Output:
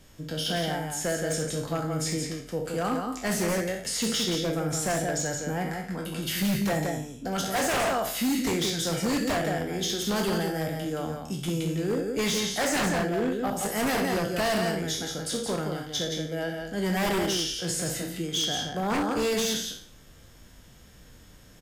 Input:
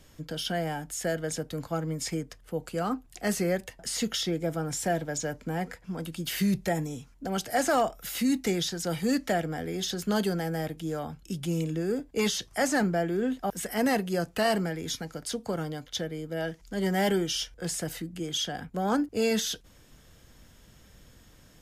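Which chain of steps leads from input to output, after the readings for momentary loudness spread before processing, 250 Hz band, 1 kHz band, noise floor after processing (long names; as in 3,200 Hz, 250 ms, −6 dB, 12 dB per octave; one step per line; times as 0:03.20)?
8 LU, +1.0 dB, +1.5 dB, −52 dBFS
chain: peak hold with a decay on every bin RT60 0.48 s
loudspeakers that aren't time-aligned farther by 22 metres −10 dB, 59 metres −5 dB
wave folding −20.5 dBFS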